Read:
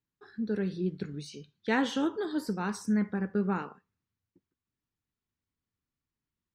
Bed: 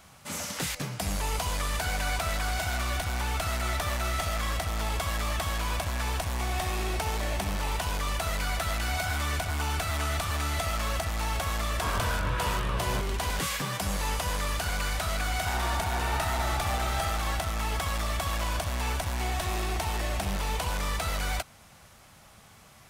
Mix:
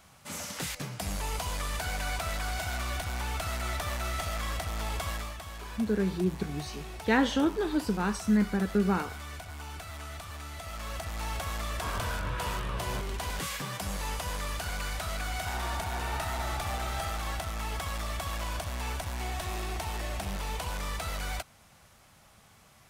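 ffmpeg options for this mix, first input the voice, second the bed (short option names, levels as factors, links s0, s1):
-filter_complex "[0:a]adelay=5400,volume=1.41[s0];[1:a]volume=1.58,afade=t=out:st=5.1:d=0.25:silence=0.375837,afade=t=in:st=10.6:d=0.67:silence=0.421697[s1];[s0][s1]amix=inputs=2:normalize=0"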